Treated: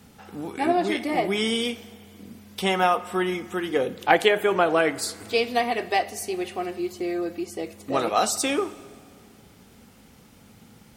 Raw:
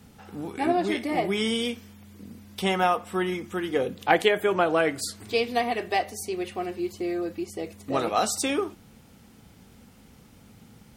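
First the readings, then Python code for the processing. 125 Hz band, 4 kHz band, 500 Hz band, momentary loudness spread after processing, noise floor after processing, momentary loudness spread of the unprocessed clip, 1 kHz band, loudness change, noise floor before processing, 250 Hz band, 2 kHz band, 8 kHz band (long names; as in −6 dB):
−0.5 dB, +2.5 dB, +2.0 dB, 12 LU, −53 dBFS, 12 LU, +2.5 dB, +2.0 dB, −53 dBFS, +1.0 dB, +2.5 dB, +2.5 dB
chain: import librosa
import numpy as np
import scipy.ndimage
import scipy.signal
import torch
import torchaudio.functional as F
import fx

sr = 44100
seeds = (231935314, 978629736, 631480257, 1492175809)

y = fx.low_shelf(x, sr, hz=180.0, db=-5.5)
y = fx.rev_plate(y, sr, seeds[0], rt60_s=2.4, hf_ratio=0.75, predelay_ms=0, drr_db=17.5)
y = y * librosa.db_to_amplitude(2.5)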